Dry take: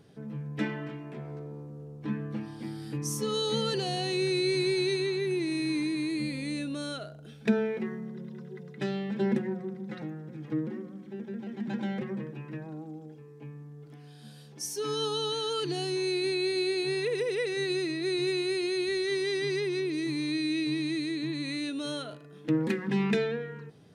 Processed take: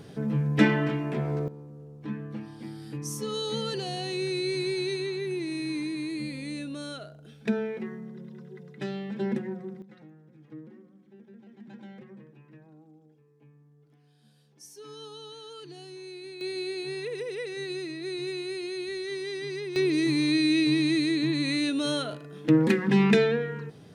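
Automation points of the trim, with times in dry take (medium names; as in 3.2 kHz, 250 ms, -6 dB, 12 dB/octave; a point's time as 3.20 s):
+11 dB
from 1.48 s -2 dB
from 9.82 s -13 dB
from 16.41 s -4.5 dB
from 19.76 s +6.5 dB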